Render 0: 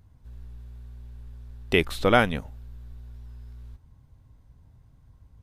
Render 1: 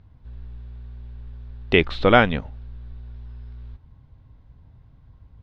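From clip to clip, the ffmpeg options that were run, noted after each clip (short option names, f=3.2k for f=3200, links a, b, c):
-af "lowpass=f=4.2k:w=0.5412,lowpass=f=4.2k:w=1.3066,volume=4.5dB"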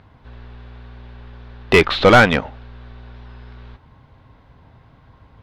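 -filter_complex "[0:a]asplit=2[a][b];[b]highpass=f=720:p=1,volume=23dB,asoftclip=type=tanh:threshold=-1dB[c];[a][c]amix=inputs=2:normalize=0,lowpass=f=2.7k:p=1,volume=-6dB"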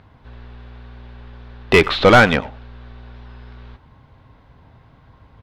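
-af "aecho=1:1:96:0.075"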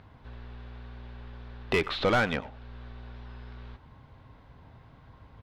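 -af "acompressor=threshold=-37dB:ratio=1.5,volume=-4dB"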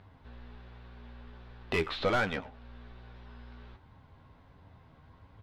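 -af "flanger=delay=10:depth=3.2:regen=40:speed=1.3:shape=triangular"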